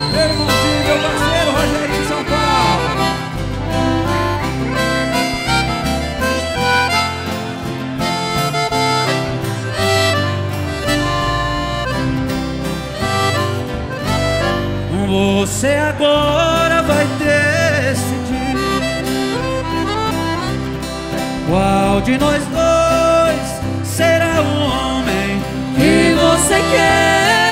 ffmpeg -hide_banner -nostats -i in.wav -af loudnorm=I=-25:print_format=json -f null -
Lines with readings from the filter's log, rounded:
"input_i" : "-15.3",
"input_tp" : "-3.2",
"input_lra" : "5.2",
"input_thresh" : "-25.3",